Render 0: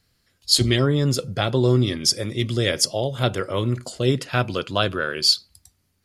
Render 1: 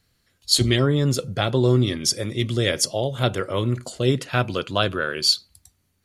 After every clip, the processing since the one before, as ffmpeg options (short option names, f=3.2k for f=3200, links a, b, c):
-af "bandreject=f=5k:w=9.6"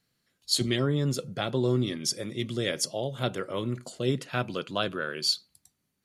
-af "lowshelf=f=110:t=q:w=1.5:g=-10.5,volume=-7.5dB"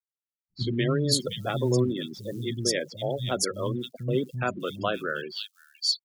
-filter_complex "[0:a]afftfilt=real='re*gte(hypot(re,im),0.0282)':imag='im*gte(hypot(re,im),0.0282)':win_size=1024:overlap=0.75,acrusher=bits=9:mode=log:mix=0:aa=0.000001,acrossover=split=200|3100[a][b][c];[b]adelay=80[d];[c]adelay=600[e];[a][d][e]amix=inputs=3:normalize=0,volume=2.5dB"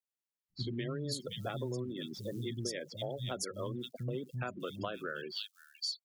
-af "acompressor=threshold=-32dB:ratio=6,volume=-3dB"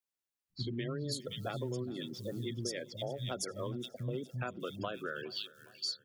-af "aecho=1:1:413|826|1239|1652:0.0891|0.0508|0.029|0.0165"